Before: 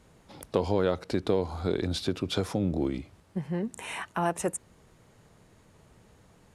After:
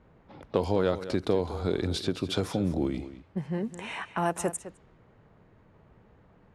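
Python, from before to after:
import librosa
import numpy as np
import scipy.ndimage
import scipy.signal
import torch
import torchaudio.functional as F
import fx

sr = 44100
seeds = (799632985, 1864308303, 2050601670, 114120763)

y = x + 10.0 ** (-13.5 / 20.0) * np.pad(x, (int(208 * sr / 1000.0), 0))[:len(x)]
y = fx.env_lowpass(y, sr, base_hz=1800.0, full_db=-26.5)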